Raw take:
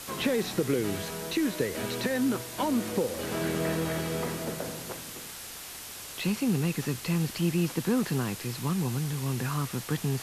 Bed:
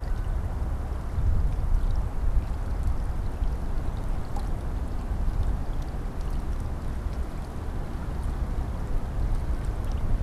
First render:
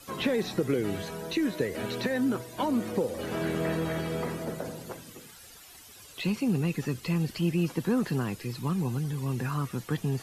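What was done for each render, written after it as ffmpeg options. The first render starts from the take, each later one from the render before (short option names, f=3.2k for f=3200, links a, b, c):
-af "afftdn=nr=13:nf=-42"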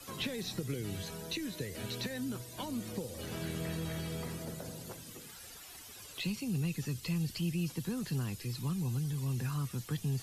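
-filter_complex "[0:a]acrossover=split=150|3000[a][b][c];[b]acompressor=threshold=-52dB:ratio=2[d];[a][d][c]amix=inputs=3:normalize=0"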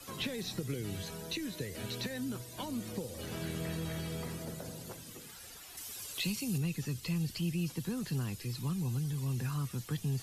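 -filter_complex "[0:a]asettb=1/sr,asplit=3[a][b][c];[a]atrim=end=5.774[d];[b]atrim=start=5.77:end=6.58,asetpts=PTS-STARTPTS,afade=t=in:d=0.004:c=qsin,afade=t=out:st=0.806:d=0.004:c=qsin,highshelf=f=4k:g=8.5[e];[c]atrim=start=6.576[f];[d][e]acrossfade=d=0.004:c1=hsin:c2=qsin[g];[g][f]acrossfade=d=0.004:c1=qsin:c2=hsin"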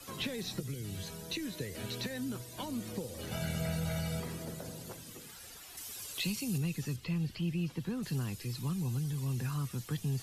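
-filter_complex "[0:a]asettb=1/sr,asplit=3[a][b][c];[a]atrim=end=0.604[d];[b]atrim=start=0.6:end=1.3,asetpts=PTS-STARTPTS,afade=t=in:d=0.004:c=qsin,afade=t=out:st=0.696:d=0.004:c=qsin,acrossover=split=200|3000[e][f][g];[f]acompressor=threshold=-46dB:ratio=6:attack=3.2:release=140:knee=2.83:detection=peak[h];[e][h][g]amix=inputs=3:normalize=0[i];[c]atrim=start=1.296[j];[d][i]acrossfade=d=0.004:c1=hsin:c2=qsin[k];[k][j]acrossfade=d=0.004:c1=qsin:c2=hsin,asettb=1/sr,asplit=3[l][m][n];[l]atrim=end=3.314[o];[m]atrim=start=3.31:end=4.2,asetpts=PTS-STARTPTS,afade=t=in:d=0.004:c=qsin,afade=t=out:st=0.886:d=0.004:c=qsin,aecho=1:1:1.4:0.98,atrim=end_sample=39249[p];[n]atrim=start=4.196[q];[o][p]acrossfade=d=0.004:c1=hsin:c2=qsin[r];[r][q]acrossfade=d=0.004:c1=qsin:c2=hsin,asettb=1/sr,asplit=3[s][t][u];[s]atrim=end=6.964[v];[t]atrim=start=6.96:end=8.03,asetpts=PTS-STARTPTS,afade=t=in:d=0.004:c=qsin,afade=t=out:st=1.066:d=0.004:c=qsin,acrossover=split=3900[w][x];[x]acompressor=threshold=-60dB:ratio=4:attack=1:release=60[y];[w][y]amix=inputs=2:normalize=0[z];[u]atrim=start=8.026[aa];[v][z]acrossfade=d=0.004:c1=hsin:c2=qsin[ab];[ab][aa]acrossfade=d=0.004:c1=qsin:c2=hsin"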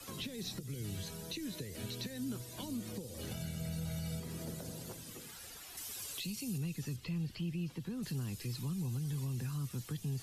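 -filter_complex "[0:a]acrossover=split=420|3000[a][b][c];[b]acompressor=threshold=-51dB:ratio=6[d];[a][d][c]amix=inputs=3:normalize=0,alimiter=level_in=7dB:limit=-24dB:level=0:latency=1:release=231,volume=-7dB"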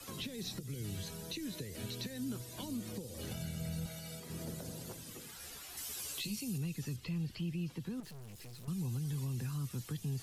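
-filter_complex "[0:a]asettb=1/sr,asplit=3[a][b][c];[a]atrim=end=3.864[d];[b]atrim=start=3.86:end=4.3,asetpts=PTS-STARTPTS,afade=t=in:d=0.004:c=qsin,afade=t=out:st=0.436:d=0.004:c=qsin,highpass=f=400:p=1[e];[c]atrim=start=4.296[f];[d][e]acrossfade=d=0.004:c1=hsin:c2=qsin[g];[g][f]acrossfade=d=0.004:c1=qsin:c2=hsin,asettb=1/sr,asplit=3[h][i][j];[h]atrim=end=5.384[k];[i]atrim=start=5.38:end=6.39,asetpts=PTS-STARTPTS,afade=t=in:d=0.004:c=qsin,afade=t=out:st=1.006:d=0.004:c=qsin,asplit=2[l][m];[m]adelay=14,volume=-4dB[n];[l][n]amix=inputs=2:normalize=0,atrim=end_sample=44541[o];[j]atrim=start=6.386[p];[k][o]acrossfade=d=0.004:c1=hsin:c2=qsin[q];[q][p]acrossfade=d=0.004:c1=qsin:c2=hsin,asettb=1/sr,asplit=3[r][s][t];[r]atrim=end=8.004[u];[s]atrim=start=8:end=8.68,asetpts=PTS-STARTPTS,afade=t=in:d=0.004:c=qsin,afade=t=out:st=0.676:d=0.004:c=qsin,aeval=exprs='(tanh(282*val(0)+0.65)-tanh(0.65))/282':c=same[v];[t]atrim=start=8.676[w];[u][v]acrossfade=d=0.004:c1=hsin:c2=qsin[x];[x][w]acrossfade=d=0.004:c1=qsin:c2=hsin"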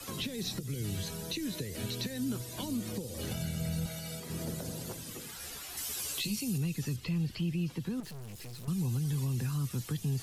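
-af "volume=5.5dB"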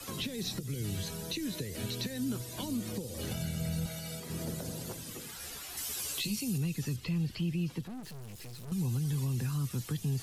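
-filter_complex "[0:a]asettb=1/sr,asplit=3[a][b][c];[a]atrim=end=7.814[d];[b]atrim=start=7.81:end=8.72,asetpts=PTS-STARTPTS,afade=t=in:d=0.004:c=qsin,afade=t=out:st=0.906:d=0.004:c=qsin,aeval=exprs='(tanh(100*val(0)+0.4)-tanh(0.4))/100':c=same[e];[c]atrim=start=8.716[f];[d][e]acrossfade=d=0.004:c1=hsin:c2=qsin[g];[g][f]acrossfade=d=0.004:c1=qsin:c2=hsin"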